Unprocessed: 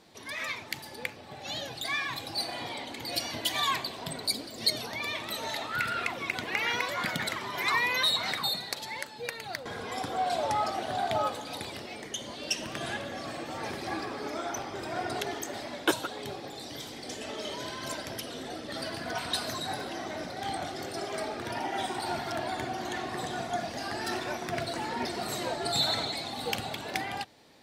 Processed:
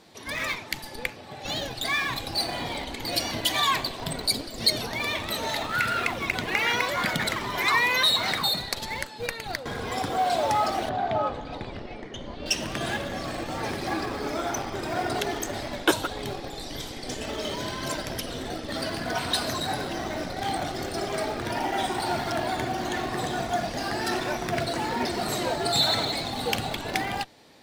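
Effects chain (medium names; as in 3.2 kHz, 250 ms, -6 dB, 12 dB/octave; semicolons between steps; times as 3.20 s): in parallel at -10 dB: Schmitt trigger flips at -33 dBFS; 10.89–12.46 s: on the sum: tape spacing loss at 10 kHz 27 dB; trim +4 dB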